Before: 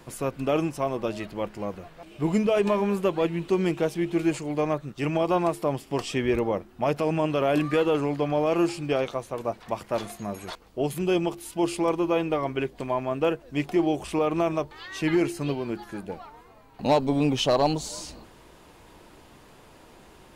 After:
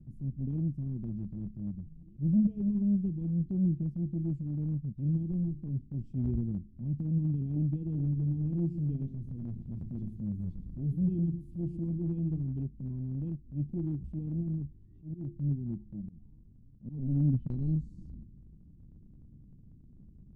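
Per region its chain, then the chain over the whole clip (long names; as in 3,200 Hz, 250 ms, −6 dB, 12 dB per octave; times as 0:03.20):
0:05.31–0:05.95: mains-hum notches 50/100/150/200/250/300/350 Hz + windowed peak hold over 5 samples
0:07.85–0:12.43: converter with a step at zero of −37 dBFS + double-tracking delay 12 ms −12 dB + single-tap delay 113 ms −9.5 dB
0:14.37–0:17.50: low-pass filter 1,800 Hz + volume swells 157 ms
whole clip: inverse Chebyshev low-pass filter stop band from 530 Hz, stop band 50 dB; transient designer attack −7 dB, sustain −2 dB; level +5 dB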